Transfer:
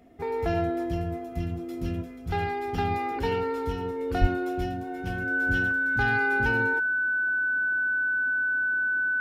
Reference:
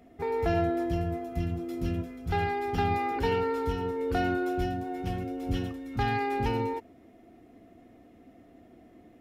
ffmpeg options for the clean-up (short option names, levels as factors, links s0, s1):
-filter_complex "[0:a]bandreject=f=1500:w=30,asplit=3[s0][s1][s2];[s0]afade=t=out:st=4.2:d=0.02[s3];[s1]highpass=f=140:w=0.5412,highpass=f=140:w=1.3066,afade=t=in:st=4.2:d=0.02,afade=t=out:st=4.32:d=0.02[s4];[s2]afade=t=in:st=4.32:d=0.02[s5];[s3][s4][s5]amix=inputs=3:normalize=0"